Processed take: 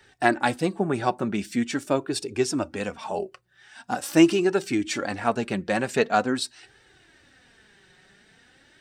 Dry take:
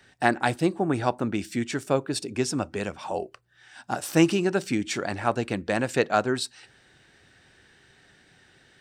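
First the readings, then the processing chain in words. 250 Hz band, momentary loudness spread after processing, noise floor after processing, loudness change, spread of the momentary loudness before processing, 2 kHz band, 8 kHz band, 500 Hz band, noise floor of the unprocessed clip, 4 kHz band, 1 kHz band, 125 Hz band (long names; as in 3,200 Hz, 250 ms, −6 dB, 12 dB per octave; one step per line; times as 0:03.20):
+2.0 dB, 12 LU, −59 dBFS, +1.5 dB, 11 LU, +1.0 dB, +0.5 dB, +1.5 dB, −59 dBFS, +1.5 dB, +1.5 dB, −2.5 dB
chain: flanger 0.44 Hz, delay 2.2 ms, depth 3.4 ms, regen +30%
level +4.5 dB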